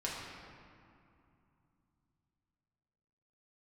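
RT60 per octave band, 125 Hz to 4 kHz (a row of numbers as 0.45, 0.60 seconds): 4.3, 3.7, 2.5, 2.7, 2.1, 1.4 seconds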